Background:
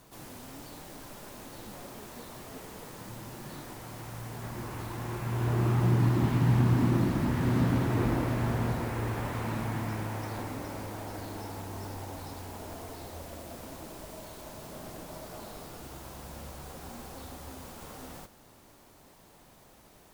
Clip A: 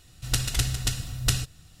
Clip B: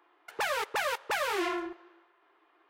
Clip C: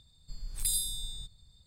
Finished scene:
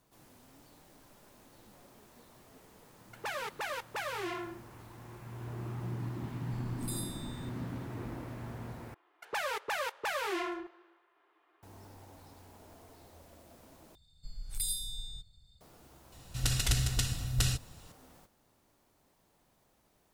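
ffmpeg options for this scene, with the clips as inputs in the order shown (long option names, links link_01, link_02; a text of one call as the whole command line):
ffmpeg -i bed.wav -i cue0.wav -i cue1.wav -i cue2.wav -filter_complex "[2:a]asplit=2[link_01][link_02];[3:a]asplit=2[link_03][link_04];[0:a]volume=-13.5dB[link_05];[link_04]aecho=1:1:1.4:0.3[link_06];[1:a]alimiter=level_in=15dB:limit=-1dB:release=50:level=0:latency=1[link_07];[link_05]asplit=3[link_08][link_09][link_10];[link_08]atrim=end=8.944[link_11];[link_02]atrim=end=2.69,asetpts=PTS-STARTPTS,volume=-4dB[link_12];[link_09]atrim=start=11.626:end=13.954[link_13];[link_06]atrim=end=1.66,asetpts=PTS-STARTPTS,volume=-4.5dB[link_14];[link_10]atrim=start=15.606[link_15];[link_01]atrim=end=2.69,asetpts=PTS-STARTPTS,volume=-7dB,afade=type=in:duration=0.004:curve=hsin,afade=type=out:start_time=2.686:duration=0.004:curve=hsin,adelay=2850[link_16];[link_03]atrim=end=1.66,asetpts=PTS-STARTPTS,volume=-11dB,afade=type=in:duration=0.004:curve=hsin,afade=type=out:start_time=1.656:duration=0.004:curve=hsin,adelay=6230[link_17];[link_07]atrim=end=1.8,asetpts=PTS-STARTPTS,volume=-16.5dB,afade=type=in:duration=0.004:curve=hsin,afade=type=out:start_time=1.796:duration=0.004:curve=hsin,adelay=16120[link_18];[link_11][link_12]acrossfade=duration=0.004:curve1=hsin:curve2=hsin[link_19];[link_19][link_13]acrossfade=duration=0.004:curve1=hsin:curve2=hsin[link_20];[link_20][link_14]acrossfade=duration=0.004:curve1=hsin:curve2=hsin[link_21];[link_21][link_15]acrossfade=duration=0.004:curve1=hsin:curve2=hsin[link_22];[link_22][link_16][link_17][link_18]amix=inputs=4:normalize=0" out.wav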